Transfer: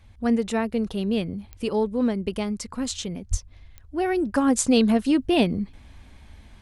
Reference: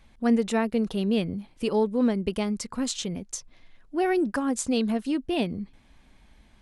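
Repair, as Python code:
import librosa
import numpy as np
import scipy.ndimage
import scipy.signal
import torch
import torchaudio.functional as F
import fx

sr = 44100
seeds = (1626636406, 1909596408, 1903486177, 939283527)

y = fx.fix_declick_ar(x, sr, threshold=10.0)
y = fx.fix_deplosive(y, sr, at_s=(3.3,))
y = fx.noise_reduce(y, sr, print_start_s=3.4, print_end_s=3.9, reduce_db=7.0)
y = fx.gain(y, sr, db=fx.steps((0.0, 0.0), (4.36, -6.5)))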